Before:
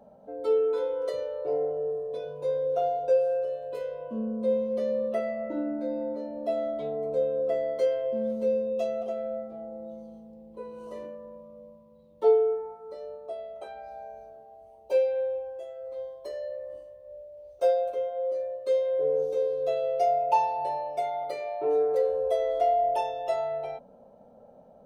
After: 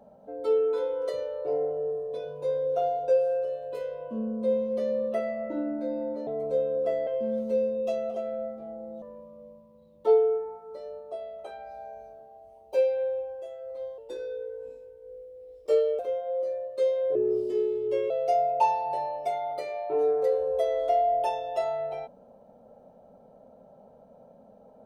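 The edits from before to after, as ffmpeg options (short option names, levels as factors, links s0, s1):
-filter_complex "[0:a]asplit=8[s0][s1][s2][s3][s4][s5][s6][s7];[s0]atrim=end=6.272[s8];[s1]atrim=start=6.898:end=7.702[s9];[s2]atrim=start=7.988:end=9.942[s10];[s3]atrim=start=11.188:end=16.154[s11];[s4]atrim=start=16.15:end=17.88,asetpts=PTS-STARTPTS,asetrate=37926,aresample=44100[s12];[s5]atrim=start=17.876:end=19.044[s13];[s6]atrim=start=19.04:end=19.82,asetpts=PTS-STARTPTS,asetrate=36162,aresample=44100[s14];[s7]atrim=start=19.816[s15];[s8][s9]acrossfade=d=0.004:c1=hsin:c2=hsin[s16];[s16][s10]acrossfade=d=0.004:c1=hsin:c2=hsin[s17];[s17][s11]acrossfade=d=0.004:c1=hsin:c2=hsin[s18];[s18][s12]acrossfade=d=0.004:c1=hsin:c2=hsin[s19];[s19][s13]acrossfade=d=0.004:c1=hsin:c2=hsin[s20];[s20][s14]acrossfade=d=0.004:c1=hsin:c2=hsin[s21];[s21][s15]acrossfade=d=0.004:c1=hsin:c2=hsin"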